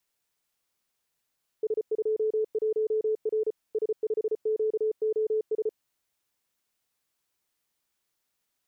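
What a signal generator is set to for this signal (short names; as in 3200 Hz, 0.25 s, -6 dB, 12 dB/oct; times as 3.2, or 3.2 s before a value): Morse "S21R S5QOS" 34 wpm 434 Hz -23 dBFS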